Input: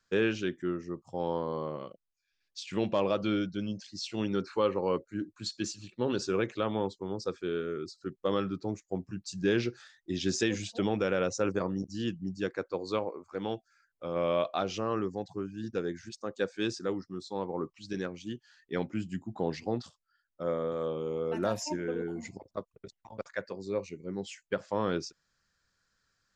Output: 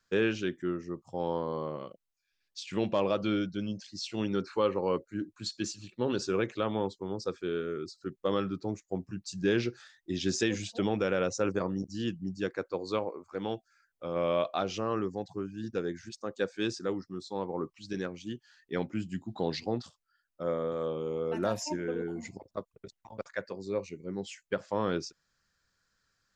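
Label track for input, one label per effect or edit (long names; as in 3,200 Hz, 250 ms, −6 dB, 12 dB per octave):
19.160000	19.660000	parametric band 4,000 Hz +12.5 dB 0.61 octaves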